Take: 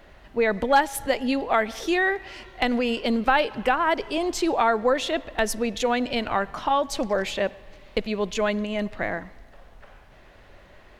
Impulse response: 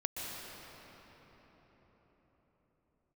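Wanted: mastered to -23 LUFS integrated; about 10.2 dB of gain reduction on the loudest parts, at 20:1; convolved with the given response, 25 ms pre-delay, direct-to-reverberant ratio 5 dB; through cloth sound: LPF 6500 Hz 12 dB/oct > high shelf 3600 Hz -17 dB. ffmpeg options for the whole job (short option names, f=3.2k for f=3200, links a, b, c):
-filter_complex "[0:a]acompressor=threshold=-23dB:ratio=20,asplit=2[a][b];[1:a]atrim=start_sample=2205,adelay=25[c];[b][c]afir=irnorm=-1:irlink=0,volume=-8.5dB[d];[a][d]amix=inputs=2:normalize=0,lowpass=6.5k,highshelf=f=3.6k:g=-17,volume=6.5dB"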